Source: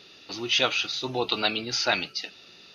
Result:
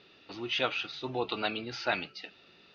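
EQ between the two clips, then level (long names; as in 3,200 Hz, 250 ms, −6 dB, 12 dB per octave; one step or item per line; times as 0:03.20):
low-pass filter 2,800 Hz 12 dB per octave
−4.5 dB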